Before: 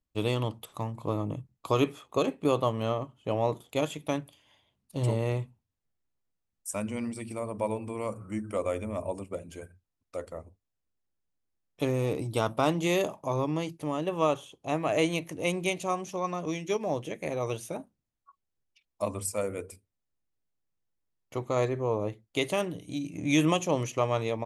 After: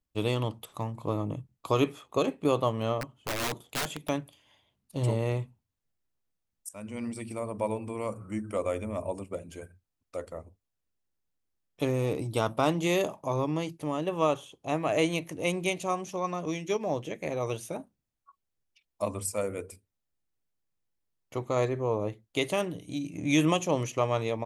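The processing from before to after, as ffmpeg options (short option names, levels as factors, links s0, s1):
-filter_complex "[0:a]asettb=1/sr,asplit=3[s0][s1][s2];[s0]atrim=end=3.014[s3];[s1]atrim=start=3.01:end=4.09,asetpts=PTS-STARTPTS,afade=t=in:d=0.004:c=qsin,afade=t=out:st=1.076:d=0.004:c=qsin,aeval=exprs='(mod(18.8*val(0)+1,2)-1)/18.8':c=same[s4];[s2]atrim=start=4.086[s5];[s3][s4]acrossfade=d=0.004:c1=hsin:c2=qsin[s6];[s6][s5]acrossfade=d=0.004:c1=qsin:c2=hsin,asettb=1/sr,asplit=3[s7][s8][s9];[s7]atrim=end=16.724[s10];[s8]atrim=start=16.72:end=17.36,asetpts=PTS-STARTPTS,afade=t=in:d=0.004:c=qsin,afade=t=out:st=0.636:d=0.004:c=qsin,equalizer=f=9800:w=4.4:g=-9.5[s11];[s9]atrim=start=17.356[s12];[s10][s11]acrossfade=d=0.004:c1=hsin:c2=qsin[s13];[s13][s12]acrossfade=d=0.004:c1=qsin:c2=hsin,asplit=2[s14][s15];[s14]atrim=end=6.69,asetpts=PTS-STARTPTS,afade=t=out:st=6.686:d=0.004:c=hsin:silence=0.1[s16];[s15]atrim=start=6.69,asetpts=PTS-STARTPTS,afade=t=in:d=0.42:silence=0.1[s17];[s16][s17]concat=n=2:v=0:a=1"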